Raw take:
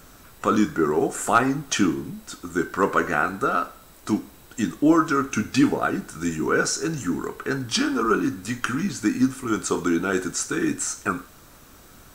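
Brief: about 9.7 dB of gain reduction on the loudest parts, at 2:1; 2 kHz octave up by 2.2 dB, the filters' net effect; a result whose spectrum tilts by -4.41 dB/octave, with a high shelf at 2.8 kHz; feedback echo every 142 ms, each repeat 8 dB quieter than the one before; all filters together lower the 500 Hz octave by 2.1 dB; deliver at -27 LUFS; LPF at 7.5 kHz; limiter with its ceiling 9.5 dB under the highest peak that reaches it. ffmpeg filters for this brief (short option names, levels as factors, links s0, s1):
-af "lowpass=7500,equalizer=f=500:t=o:g=-3,equalizer=f=2000:t=o:g=5.5,highshelf=f=2800:g=-5,acompressor=threshold=0.0282:ratio=2,alimiter=limit=0.0841:level=0:latency=1,aecho=1:1:142|284|426|568|710:0.398|0.159|0.0637|0.0255|0.0102,volume=1.88"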